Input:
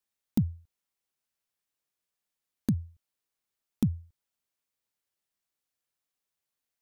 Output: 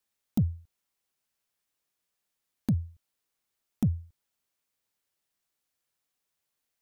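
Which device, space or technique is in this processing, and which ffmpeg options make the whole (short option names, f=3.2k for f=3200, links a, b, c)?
soft clipper into limiter: -af "asoftclip=type=tanh:threshold=-16dB,alimiter=limit=-22dB:level=0:latency=1:release=55,volume=4dB"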